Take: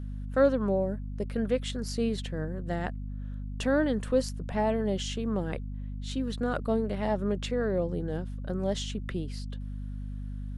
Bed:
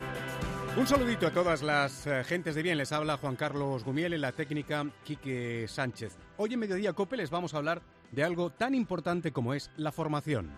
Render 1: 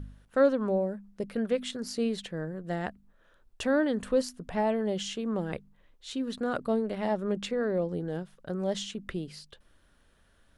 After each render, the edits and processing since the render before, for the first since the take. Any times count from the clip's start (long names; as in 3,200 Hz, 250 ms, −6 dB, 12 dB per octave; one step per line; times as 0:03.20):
hum removal 50 Hz, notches 5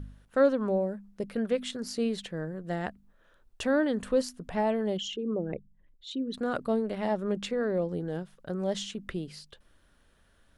0:04.97–0:06.34: spectral envelope exaggerated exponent 2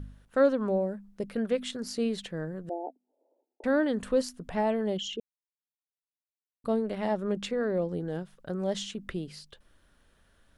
0:02.69–0:03.64: Chebyshev band-pass filter 260–880 Hz, order 5
0:05.20–0:06.64: silence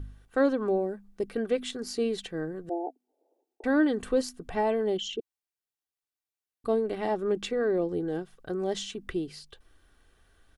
dynamic equaliser 330 Hz, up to +4 dB, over −41 dBFS, Q 2
comb filter 2.6 ms, depth 46%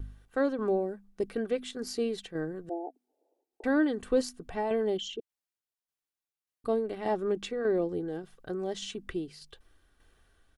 shaped tremolo saw down 1.7 Hz, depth 50%
pitch vibrato 0.64 Hz 11 cents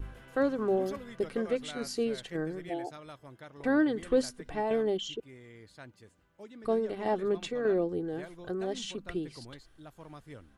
mix in bed −16.5 dB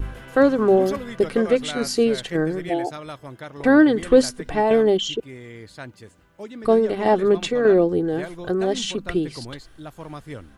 level +12 dB